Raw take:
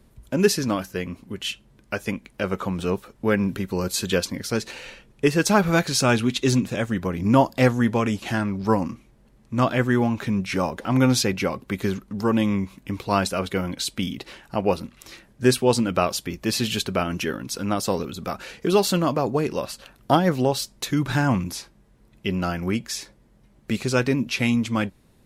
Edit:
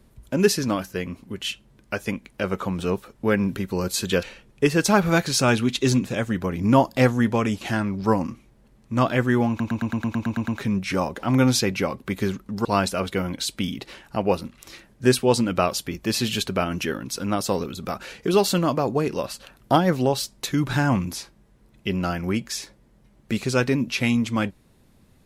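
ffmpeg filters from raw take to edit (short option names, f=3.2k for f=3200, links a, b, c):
-filter_complex "[0:a]asplit=12[a][b][c][d][e][f][g][h][i][j][k][l];[a]atrim=end=4.232[m];[b]atrim=start=4.838:end=10.212[n];[c]atrim=start=10.098:end=10.212[o];[d]atrim=start=10.098:end=10.212[p];[e]atrim=start=10.098:end=10.212[q];[f]atrim=start=10.098:end=10.212[r];[g]atrim=start=10.098:end=10.212[s];[h]atrim=start=10.098:end=10.212[t];[i]atrim=start=10.098:end=10.212[u];[j]atrim=start=10.098:end=10.212[v];[k]atrim=start=10.098:end=12.272[w];[l]atrim=start=13.038[x];[m][n]acrossfade=d=0.004:c1=hsin:c2=hsin[y];[y][o]acrossfade=d=0.004:c1=hsin:c2=hsin[z];[z][p]acrossfade=d=0.004:c1=hsin:c2=hsin[aa];[aa][q]acrossfade=d=0.004:c1=hsin:c2=hsin[ab];[ab][r]acrossfade=d=0.004:c1=hsin:c2=hsin[ac];[ac][s]acrossfade=d=0.004:c1=hsin:c2=hsin[ad];[ad][t]acrossfade=d=0.004:c1=hsin:c2=hsin[ae];[ae][u]acrossfade=d=0.004:c1=hsin:c2=hsin[af];[af][v]acrossfade=d=0.004:c1=hsin:c2=hsin[ag];[ag][w]acrossfade=d=0.004:c1=hsin:c2=hsin[ah];[ah][x]acrossfade=d=0.004:c1=hsin:c2=hsin"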